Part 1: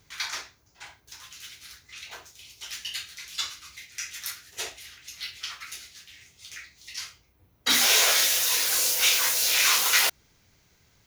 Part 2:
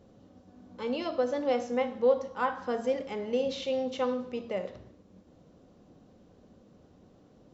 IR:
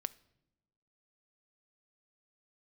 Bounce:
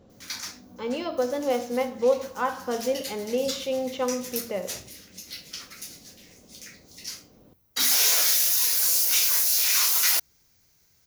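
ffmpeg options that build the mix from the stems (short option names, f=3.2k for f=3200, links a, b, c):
-filter_complex "[0:a]aexciter=amount=2.2:drive=6.6:freq=4.6k,adelay=100,volume=-6.5dB[a];[1:a]volume=2.5dB[b];[a][b]amix=inputs=2:normalize=0"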